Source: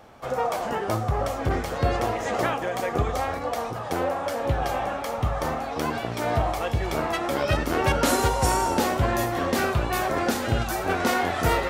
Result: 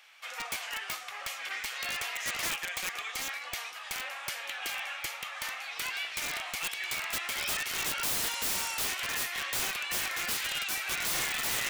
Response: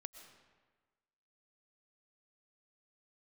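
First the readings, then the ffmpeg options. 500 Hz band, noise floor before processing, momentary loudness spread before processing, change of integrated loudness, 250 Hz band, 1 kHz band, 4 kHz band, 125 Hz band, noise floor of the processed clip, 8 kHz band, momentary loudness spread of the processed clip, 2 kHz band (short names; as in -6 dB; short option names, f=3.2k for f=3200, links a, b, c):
-22.0 dB, -32 dBFS, 6 LU, -6.5 dB, -23.0 dB, -15.0 dB, +1.5 dB, -26.5 dB, -43 dBFS, +1.5 dB, 8 LU, -2.5 dB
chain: -af "highpass=f=2.4k:t=q:w=2,aeval=exprs='(mod(18.8*val(0)+1,2)-1)/18.8':c=same"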